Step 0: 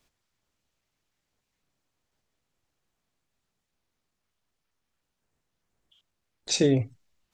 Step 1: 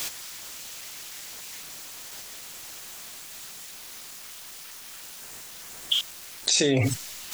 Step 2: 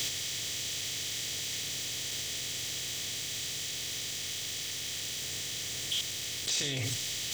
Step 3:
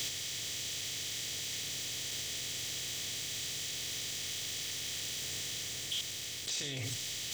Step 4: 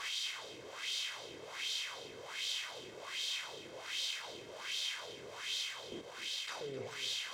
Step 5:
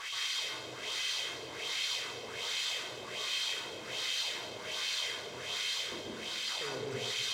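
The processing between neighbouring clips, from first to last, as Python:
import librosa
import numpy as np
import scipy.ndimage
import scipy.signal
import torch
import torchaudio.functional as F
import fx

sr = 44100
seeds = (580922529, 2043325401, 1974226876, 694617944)

y1 = fx.tilt_eq(x, sr, slope=3.5)
y1 = fx.env_flatten(y1, sr, amount_pct=100)
y1 = F.gain(torch.from_numpy(y1), -5.5).numpy()
y2 = fx.bin_compress(y1, sr, power=0.4)
y2 = fx.peak_eq(y2, sr, hz=380.0, db=-11.5, octaves=2.3)
y2 = 10.0 ** (-15.5 / 20.0) * np.tanh(y2 / 10.0 ** (-15.5 / 20.0))
y2 = F.gain(torch.from_numpy(y2), -8.5).numpy()
y3 = fx.rider(y2, sr, range_db=10, speed_s=0.5)
y3 = F.gain(torch.from_numpy(y3), -3.0).numpy()
y4 = fx.lower_of_two(y3, sr, delay_ms=1.9)
y4 = fx.wah_lfo(y4, sr, hz=1.3, low_hz=330.0, high_hz=3700.0, q=2.4)
y4 = y4 + 10.0 ** (-14.5 / 20.0) * np.pad(y4, (int(260 * sr / 1000.0), 0))[:len(y4)]
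y4 = F.gain(torch.from_numpy(y4), 8.5).numpy()
y5 = fx.rev_plate(y4, sr, seeds[0], rt60_s=0.76, hf_ratio=0.9, predelay_ms=115, drr_db=-3.5)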